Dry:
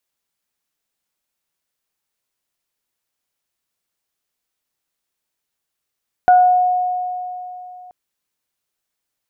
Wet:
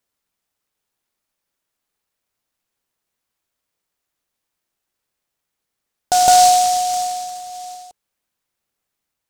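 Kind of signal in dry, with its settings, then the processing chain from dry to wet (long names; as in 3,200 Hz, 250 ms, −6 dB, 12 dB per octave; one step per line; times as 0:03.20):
harmonic partials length 1.63 s, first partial 727 Hz, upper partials −13 dB, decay 3.16 s, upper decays 0.50 s, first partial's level −6 dB
phase shifter 0.34 Hz, delay 3.7 ms, feedback 23%
on a send: backwards echo 162 ms −4 dB
on the sum: short delay modulated by noise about 5,900 Hz, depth 0.082 ms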